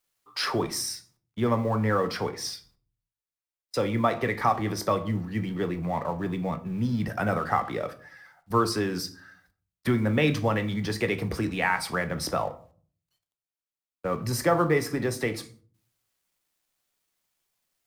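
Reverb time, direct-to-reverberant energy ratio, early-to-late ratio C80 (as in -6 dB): 0.45 s, 8.5 dB, 20.5 dB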